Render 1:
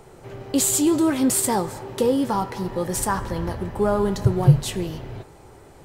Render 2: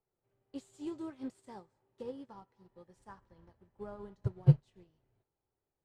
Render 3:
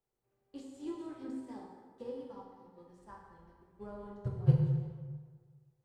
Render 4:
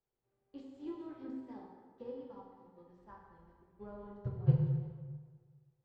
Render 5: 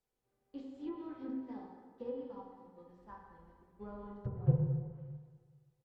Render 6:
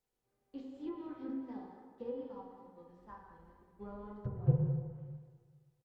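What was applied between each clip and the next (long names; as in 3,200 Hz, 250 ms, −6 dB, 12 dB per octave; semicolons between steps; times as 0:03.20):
high-frequency loss of the air 76 metres; expander for the loud parts 2.5 to 1, over −31 dBFS; level −7.5 dB
dense smooth reverb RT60 1.6 s, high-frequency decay 0.6×, DRR −1.5 dB; level −3.5 dB
high-frequency loss of the air 180 metres; level −2 dB
treble cut that deepens with the level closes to 1,100 Hz, closed at −34.5 dBFS; comb filter 4 ms, depth 30%; level +1.5 dB
tape wow and flutter 28 cents; far-end echo of a speakerphone 190 ms, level −12 dB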